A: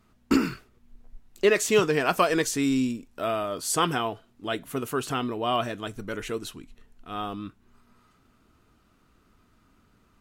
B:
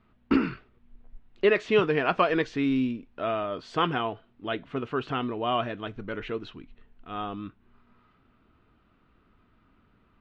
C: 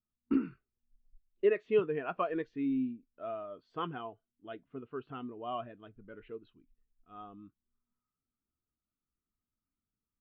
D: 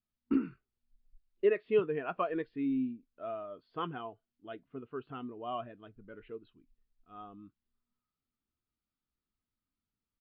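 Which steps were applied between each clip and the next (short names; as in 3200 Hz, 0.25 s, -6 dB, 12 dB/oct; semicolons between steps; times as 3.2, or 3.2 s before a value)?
LPF 3400 Hz 24 dB/oct; gain -1 dB
spectral expander 1.5:1; gain -7 dB
downsampling 11025 Hz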